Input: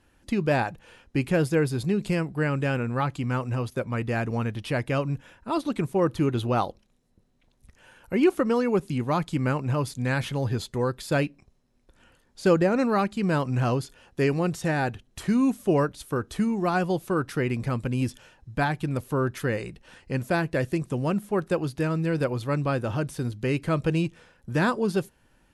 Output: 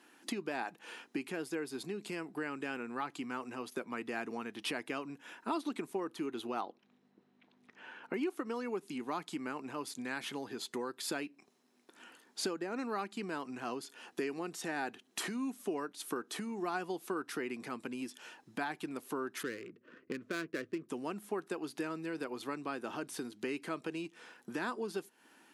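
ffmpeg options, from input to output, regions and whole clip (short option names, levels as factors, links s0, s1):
-filter_complex "[0:a]asettb=1/sr,asplit=3[s0][s1][s2];[s0]atrim=end=6.614[s3];[s1]atrim=start=6.61:end=8.14,asetpts=PTS-STARTPTS,afade=t=in:d=0.004:c=qsin,afade=t=out:st=1.526:d=0.004:c=qsin,lowpass=2900,aeval=exprs='val(0)+0.00126*(sin(2*PI*50*n/s)+sin(2*PI*2*50*n/s)/2+sin(2*PI*3*50*n/s)/3+sin(2*PI*4*50*n/s)/4+sin(2*PI*5*50*n/s)/5)':c=same[s4];[s2]atrim=start=8.136[s5];[s3][s4]acrossfade=d=0.004:c1=hsin:c2=qsin[s6];[s6][s5]acrossfade=d=0.004:c1=qsin:c2=hsin,asettb=1/sr,asplit=3[s7][s8][s9];[s7]atrim=end=19.434[s10];[s8]atrim=start=19.43:end=20.89,asetpts=PTS-STARTPTS,afade=t=in:d=0.004:c=qsin,afade=t=out:st=1.456:d=0.004:c=qsin,equalizer=f=110:t=o:w=0.22:g=12,adynamicsmooth=sensitivity=5:basefreq=690,asuperstop=centerf=820:order=4:qfactor=1.6[s11];[s9]atrim=start=20.886[s12];[s10][s11]acrossfade=d=0.004:c1=hsin:c2=qsin[s13];[s13][s12]acrossfade=d=0.004:c1=qsin:c2=hsin,acompressor=threshold=0.0178:ratio=16,highpass=f=260:w=0.5412,highpass=f=260:w=1.3066,equalizer=f=550:t=o:w=0.32:g=-10.5,volume=1.68"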